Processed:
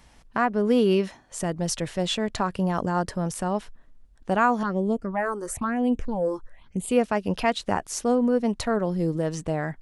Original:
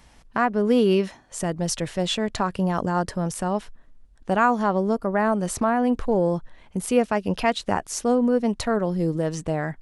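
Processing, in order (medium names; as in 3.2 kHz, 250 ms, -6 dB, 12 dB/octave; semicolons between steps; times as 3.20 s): 4.63–6.91 s: phase shifter stages 6, 1 Hz, lowest notch 170–1600 Hz; trim -1.5 dB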